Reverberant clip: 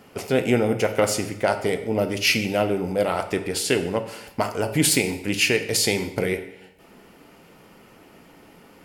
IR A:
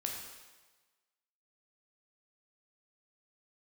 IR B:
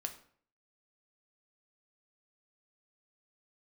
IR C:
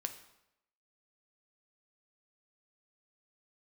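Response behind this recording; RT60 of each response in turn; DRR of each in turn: C; 1.3, 0.55, 0.85 seconds; 0.0, 5.0, 7.0 decibels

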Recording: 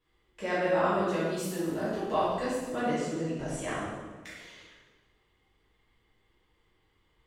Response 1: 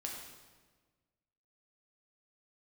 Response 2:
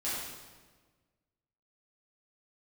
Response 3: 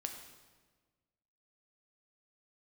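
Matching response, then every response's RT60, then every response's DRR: 2; 1.4, 1.4, 1.4 seconds; −1.5, −10.5, 4.0 decibels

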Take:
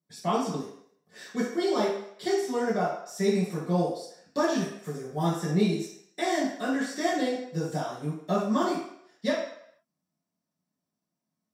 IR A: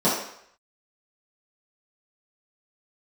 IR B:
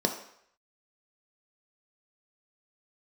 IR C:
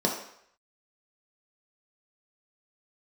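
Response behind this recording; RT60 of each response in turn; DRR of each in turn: A; 0.70, 0.70, 0.70 seconds; −10.5, 3.5, −1.0 decibels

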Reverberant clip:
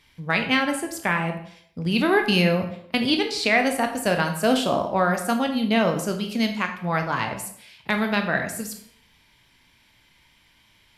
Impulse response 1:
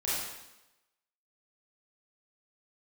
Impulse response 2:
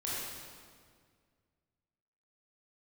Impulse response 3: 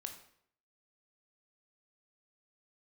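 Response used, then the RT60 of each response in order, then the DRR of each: 3; 0.95, 1.9, 0.65 seconds; −9.5, −8.0, 4.5 decibels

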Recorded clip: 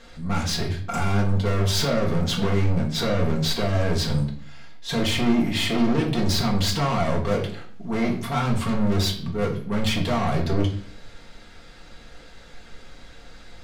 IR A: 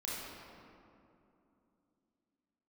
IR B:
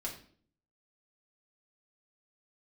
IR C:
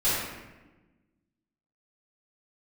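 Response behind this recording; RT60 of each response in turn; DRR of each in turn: B; 2.8, 0.50, 1.2 seconds; −7.0, −3.0, −14.0 decibels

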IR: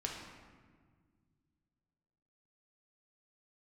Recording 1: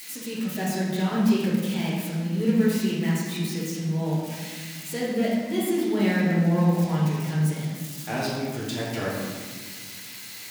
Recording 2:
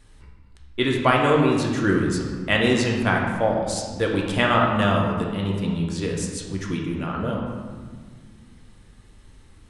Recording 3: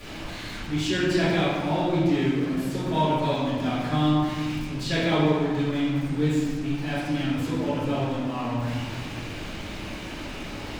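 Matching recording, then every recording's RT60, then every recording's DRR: 2; 1.7, 1.7, 1.7 seconds; −9.0, −1.5, −15.5 decibels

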